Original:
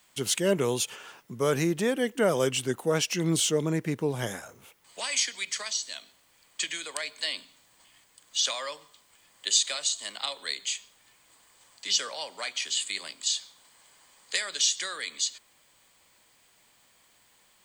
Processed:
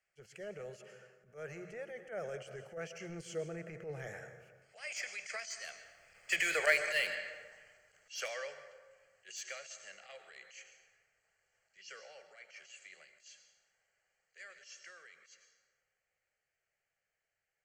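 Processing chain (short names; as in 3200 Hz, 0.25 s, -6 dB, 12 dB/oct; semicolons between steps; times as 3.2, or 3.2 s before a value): Doppler pass-by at 6.61, 16 m/s, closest 4.5 m; high shelf 3000 Hz +10.5 dB; notches 60/120/180 Hz; plate-style reverb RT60 1.6 s, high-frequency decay 0.5×, pre-delay 0.11 s, DRR 11 dB; transient shaper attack -12 dB, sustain +2 dB; air absorption 190 m; in parallel at -5 dB: hard clip -39 dBFS, distortion -5 dB; on the sum: fixed phaser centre 1000 Hz, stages 6; gain +7 dB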